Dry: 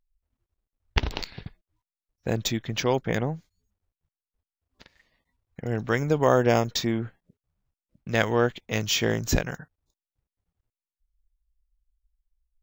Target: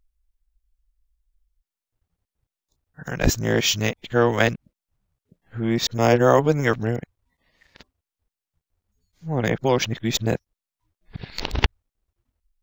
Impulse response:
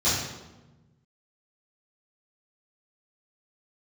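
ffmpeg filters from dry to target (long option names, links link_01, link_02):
-af "areverse,volume=4dB"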